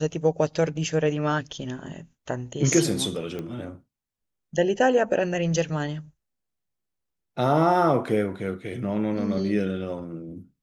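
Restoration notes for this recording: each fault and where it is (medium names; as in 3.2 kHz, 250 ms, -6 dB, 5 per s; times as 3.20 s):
3.39 s: pop -21 dBFS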